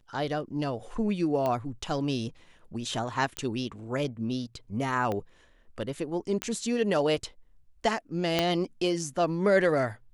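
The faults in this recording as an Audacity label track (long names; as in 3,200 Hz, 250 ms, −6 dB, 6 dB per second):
1.460000	1.460000	click −17 dBFS
3.370000	3.370000	click −16 dBFS
5.120000	5.120000	click −19 dBFS
6.420000	6.420000	click −13 dBFS
8.390000	8.390000	click −10 dBFS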